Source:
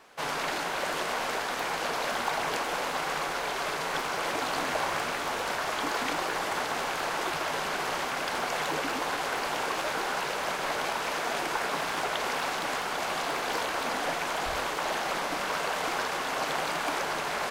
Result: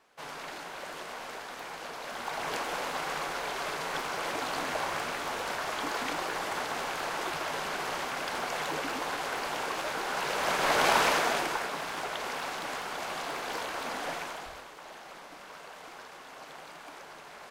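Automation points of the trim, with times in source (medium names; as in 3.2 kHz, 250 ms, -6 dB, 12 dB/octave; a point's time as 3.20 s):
2.02 s -10 dB
2.54 s -3 dB
10.04 s -3 dB
10.98 s +8 dB
11.73 s -5 dB
14.18 s -5 dB
14.66 s -16.5 dB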